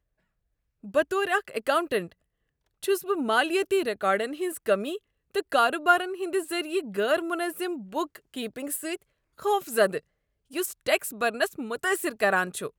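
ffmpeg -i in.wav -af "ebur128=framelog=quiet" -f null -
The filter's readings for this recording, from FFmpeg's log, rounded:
Integrated loudness:
  I:         -27.1 LUFS
  Threshold: -37.3 LUFS
Loudness range:
  LRA:         4.1 LU
  Threshold: -47.7 LUFS
  LRA low:   -30.1 LUFS
  LRA high:  -26.0 LUFS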